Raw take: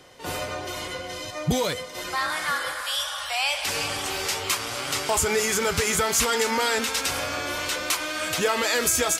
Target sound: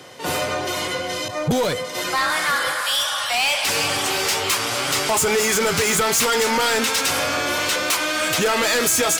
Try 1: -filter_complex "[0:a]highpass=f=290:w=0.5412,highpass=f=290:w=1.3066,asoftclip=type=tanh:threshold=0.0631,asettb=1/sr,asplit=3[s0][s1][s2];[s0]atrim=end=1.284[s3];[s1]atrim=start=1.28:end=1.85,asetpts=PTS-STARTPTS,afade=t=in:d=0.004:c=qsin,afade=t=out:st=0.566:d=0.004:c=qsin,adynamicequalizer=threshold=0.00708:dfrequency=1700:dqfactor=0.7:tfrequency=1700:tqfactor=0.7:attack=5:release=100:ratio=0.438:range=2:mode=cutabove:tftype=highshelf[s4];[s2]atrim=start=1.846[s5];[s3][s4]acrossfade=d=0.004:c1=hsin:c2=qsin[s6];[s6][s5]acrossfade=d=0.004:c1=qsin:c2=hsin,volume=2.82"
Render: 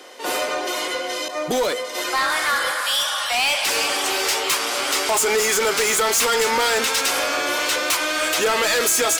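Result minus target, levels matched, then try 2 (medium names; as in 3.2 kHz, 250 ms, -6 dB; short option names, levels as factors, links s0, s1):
125 Hz band -13.5 dB
-filter_complex "[0:a]highpass=f=100:w=0.5412,highpass=f=100:w=1.3066,asoftclip=type=tanh:threshold=0.0631,asettb=1/sr,asplit=3[s0][s1][s2];[s0]atrim=end=1.284[s3];[s1]atrim=start=1.28:end=1.85,asetpts=PTS-STARTPTS,afade=t=in:d=0.004:c=qsin,afade=t=out:st=0.566:d=0.004:c=qsin,adynamicequalizer=threshold=0.00708:dfrequency=1700:dqfactor=0.7:tfrequency=1700:tqfactor=0.7:attack=5:release=100:ratio=0.438:range=2:mode=cutabove:tftype=highshelf[s4];[s2]atrim=start=1.846[s5];[s3][s4]acrossfade=d=0.004:c1=hsin:c2=qsin[s6];[s6][s5]acrossfade=d=0.004:c1=qsin:c2=hsin,volume=2.82"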